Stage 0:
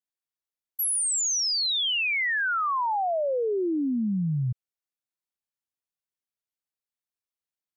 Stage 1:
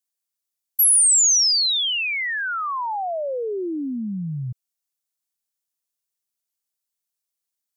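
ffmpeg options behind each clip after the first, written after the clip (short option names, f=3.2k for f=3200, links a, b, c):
-af "bass=f=250:g=-2,treble=f=4k:g=11"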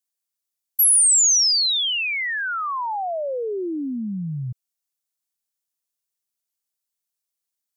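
-af anull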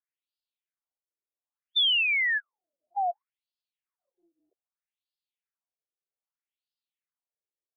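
-af "afftfilt=real='re*between(b*sr/1024,420*pow(3700/420,0.5+0.5*sin(2*PI*0.63*pts/sr))/1.41,420*pow(3700/420,0.5+0.5*sin(2*PI*0.63*pts/sr))*1.41)':imag='im*between(b*sr/1024,420*pow(3700/420,0.5+0.5*sin(2*PI*0.63*pts/sr))/1.41,420*pow(3700/420,0.5+0.5*sin(2*PI*0.63*pts/sr))*1.41)':win_size=1024:overlap=0.75"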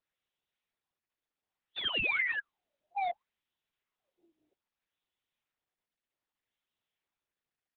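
-af "aresample=8000,asoftclip=type=hard:threshold=-30dB,aresample=44100" -ar 48000 -c:a libopus -b:a 6k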